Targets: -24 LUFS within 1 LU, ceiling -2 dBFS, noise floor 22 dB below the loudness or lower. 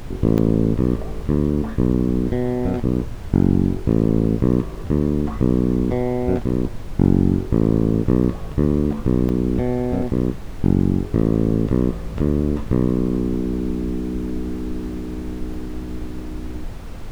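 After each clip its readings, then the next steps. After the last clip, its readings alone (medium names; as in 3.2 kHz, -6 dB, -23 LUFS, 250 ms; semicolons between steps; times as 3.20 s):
dropouts 3; longest dropout 1.6 ms; noise floor -31 dBFS; noise floor target -43 dBFS; loudness -20.5 LUFS; peak level -2.0 dBFS; loudness target -24.0 LUFS
-> interpolate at 0.38/9.29/15.54 s, 1.6 ms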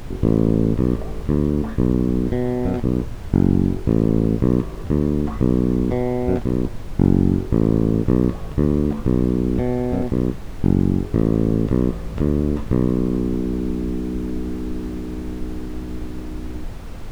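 dropouts 0; noise floor -31 dBFS; noise floor target -43 dBFS
-> noise print and reduce 12 dB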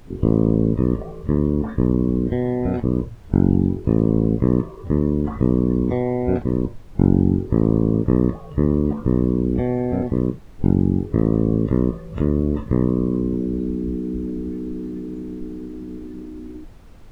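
noise floor -40 dBFS; noise floor target -43 dBFS
-> noise print and reduce 6 dB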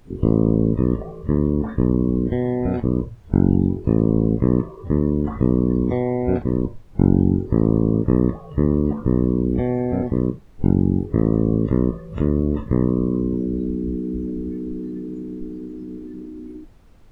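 noise floor -43 dBFS; loudness -20.5 LUFS; peak level -3.0 dBFS; loudness target -24.0 LUFS
-> trim -3.5 dB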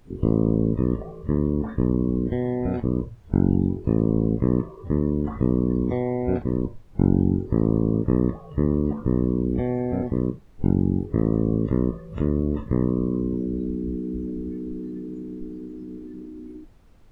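loudness -24.0 LUFS; peak level -6.5 dBFS; noise floor -47 dBFS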